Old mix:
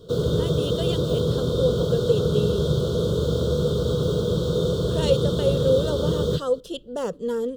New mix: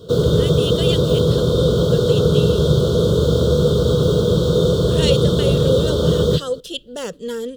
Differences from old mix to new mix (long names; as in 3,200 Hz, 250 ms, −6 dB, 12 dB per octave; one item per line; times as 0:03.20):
speech: add high shelf with overshoot 1,500 Hz +8.5 dB, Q 1.5
background +7.0 dB